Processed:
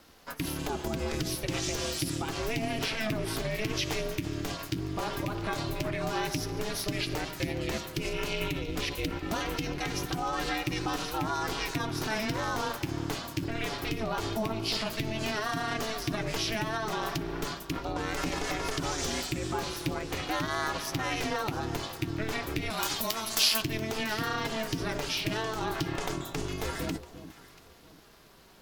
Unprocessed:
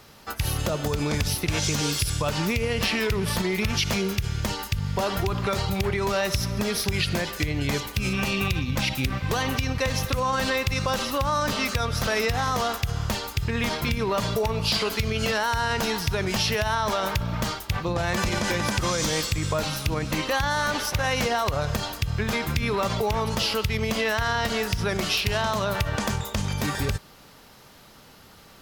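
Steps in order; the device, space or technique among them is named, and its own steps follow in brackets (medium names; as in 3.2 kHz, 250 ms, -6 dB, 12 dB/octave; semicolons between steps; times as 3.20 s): 22.70–23.62 s: tilt EQ +4.5 dB/octave; alien voice (ring modulator 220 Hz; flange 0.11 Hz, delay 3.7 ms, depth 6.4 ms, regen -51%); echo whose repeats swap between lows and highs 343 ms, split 910 Hz, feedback 52%, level -12.5 dB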